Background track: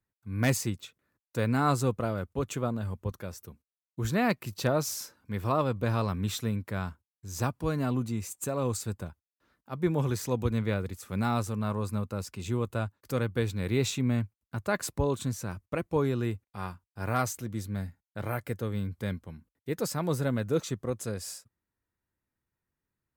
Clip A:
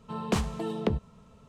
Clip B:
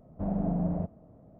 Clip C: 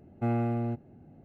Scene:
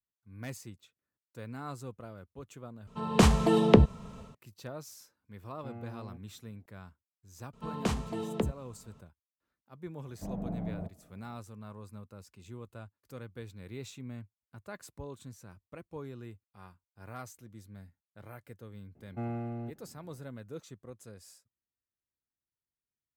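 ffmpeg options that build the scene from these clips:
ffmpeg -i bed.wav -i cue0.wav -i cue1.wav -i cue2.wav -filter_complex "[1:a]asplit=2[link_01][link_02];[3:a]asplit=2[link_03][link_04];[0:a]volume=-15.5dB[link_05];[link_01]dynaudnorm=framelen=220:gausssize=3:maxgain=11dB[link_06];[2:a]aemphasis=mode=production:type=50kf[link_07];[link_05]asplit=2[link_08][link_09];[link_08]atrim=end=2.874[link_10];[link_06]atrim=end=1.48,asetpts=PTS-STARTPTS,volume=-1dB[link_11];[link_09]atrim=start=4.346[link_12];[link_03]atrim=end=1.24,asetpts=PTS-STARTPTS,volume=-17dB,afade=type=in:duration=0.004:curve=hsin,afade=type=out:start_time=1.236:duration=0.004:curve=hsin,adelay=5420[link_13];[link_02]atrim=end=1.48,asetpts=PTS-STARTPTS,volume=-3.5dB,afade=type=in:duration=0.004:curve=hsin,afade=type=out:start_time=1.476:duration=0.004:curve=hsin,adelay=7530[link_14];[link_07]atrim=end=1.39,asetpts=PTS-STARTPTS,volume=-8dB,afade=type=in:duration=0.004:curve=hsin,afade=type=out:start_time=1.386:duration=0.004:curve=hsin,adelay=441882S[link_15];[link_04]atrim=end=1.24,asetpts=PTS-STARTPTS,volume=-8dB,afade=type=in:duration=0.004:curve=hsin,afade=type=out:start_time=1.236:duration=0.004:curve=hsin,adelay=18950[link_16];[link_10][link_11]acrossfade=duration=0.004:curve1=hsin:curve2=hsin[link_17];[link_17][link_12]acrossfade=duration=0.004:curve1=hsin:curve2=hsin[link_18];[link_18][link_13][link_14][link_15][link_16]amix=inputs=5:normalize=0" out.wav

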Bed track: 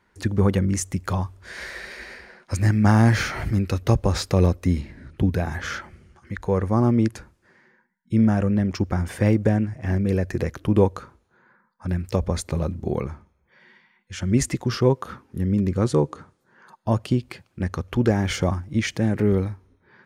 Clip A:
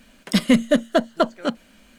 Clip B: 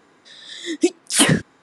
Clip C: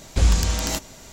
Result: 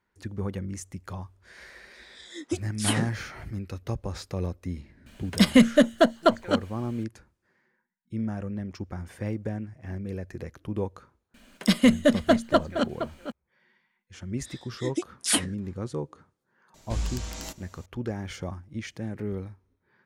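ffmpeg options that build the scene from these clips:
ffmpeg -i bed.wav -i cue0.wav -i cue1.wav -i cue2.wav -filter_complex "[2:a]asplit=2[link_01][link_02];[1:a]asplit=2[link_03][link_04];[0:a]volume=-12.5dB[link_05];[link_04]asplit=2[link_06][link_07];[link_07]adelay=466.5,volume=-10dB,highshelf=frequency=4000:gain=-10.5[link_08];[link_06][link_08]amix=inputs=2:normalize=0[link_09];[link_02]aeval=exprs='val(0)*pow(10,-22*(0.5-0.5*cos(2*PI*2.6*n/s))/20)':channel_layout=same[link_10];[link_01]atrim=end=1.62,asetpts=PTS-STARTPTS,volume=-12.5dB,afade=type=in:duration=0.004:curve=hsin,afade=type=out:start_time=1.616:duration=0.004:curve=hsin,adelay=1680[link_11];[link_03]atrim=end=1.98,asetpts=PTS-STARTPTS,volume=-0.5dB,afade=type=in:duration=0.004:curve=hsin,afade=type=out:start_time=1.976:duration=0.004:curve=hsin,adelay=5060[link_12];[link_09]atrim=end=1.98,asetpts=PTS-STARTPTS,volume=-2.5dB,afade=type=in:duration=0.004:curve=hsin,afade=type=out:start_time=1.976:duration=0.004:curve=hsin,adelay=11340[link_13];[link_10]atrim=end=1.62,asetpts=PTS-STARTPTS,volume=-4.5dB,afade=type=in:duration=0.004:curve=hsin,afade=type=out:start_time=1.616:duration=0.004:curve=hsin,adelay=14140[link_14];[3:a]atrim=end=1.12,asetpts=PTS-STARTPTS,volume=-12.5dB,afade=type=in:duration=0.004:curve=hsin,afade=type=out:start_time=1.116:duration=0.004:curve=hsin,adelay=16740[link_15];[link_05][link_11][link_12][link_13][link_14][link_15]amix=inputs=6:normalize=0" out.wav

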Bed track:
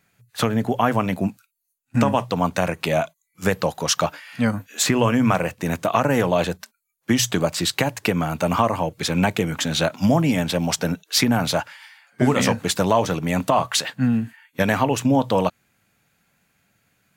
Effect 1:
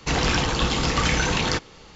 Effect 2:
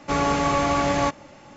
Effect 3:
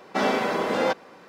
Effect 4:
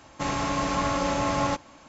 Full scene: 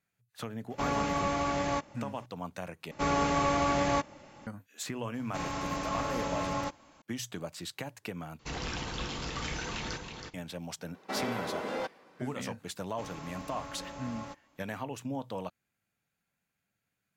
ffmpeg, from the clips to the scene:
ffmpeg -i bed.wav -i cue0.wav -i cue1.wav -i cue2.wav -i cue3.wav -filter_complex "[2:a]asplit=2[link_01][link_02];[4:a]asplit=2[link_03][link_04];[0:a]volume=-18.5dB[link_05];[1:a]aecho=1:1:323:0.501[link_06];[3:a]volume=17.5dB,asoftclip=hard,volume=-17.5dB[link_07];[link_05]asplit=3[link_08][link_09][link_10];[link_08]atrim=end=2.914[link_11];[link_02]atrim=end=1.56,asetpts=PTS-STARTPTS,volume=-6dB[link_12];[link_09]atrim=start=4.466:end=8.394[link_13];[link_06]atrim=end=1.95,asetpts=PTS-STARTPTS,volume=-15dB[link_14];[link_10]atrim=start=10.336[link_15];[link_01]atrim=end=1.56,asetpts=PTS-STARTPTS,volume=-9dB,afade=type=in:duration=0.004:curve=hsin,afade=type=out:start_time=1.556:duration=0.004:curve=hsin,adelay=700[link_16];[link_03]atrim=end=1.88,asetpts=PTS-STARTPTS,volume=-8dB,afade=type=in:duration=0.004:curve=hsin,afade=type=out:start_time=1.876:duration=0.004:curve=hsin,adelay=5140[link_17];[link_07]atrim=end=1.28,asetpts=PTS-STARTPTS,volume=-11dB,afade=type=in:duration=0.004:curve=hsin,afade=type=out:start_time=1.276:duration=0.004:curve=hsin,adelay=10940[link_18];[link_04]atrim=end=1.88,asetpts=PTS-STARTPTS,volume=-18dB,afade=type=in:duration=0.004:curve=hsin,afade=type=out:start_time=1.876:duration=0.004:curve=hsin,adelay=12780[link_19];[link_11][link_12]acrossfade=duration=0.004:curve1=hsin:curve2=hsin[link_20];[link_20][link_13]acrossfade=duration=0.004:curve1=hsin:curve2=hsin[link_21];[link_21][link_14]acrossfade=duration=0.004:curve1=hsin:curve2=hsin[link_22];[link_22][link_15]acrossfade=duration=0.004:curve1=hsin:curve2=hsin[link_23];[link_23][link_16][link_17][link_18][link_19]amix=inputs=5:normalize=0" out.wav

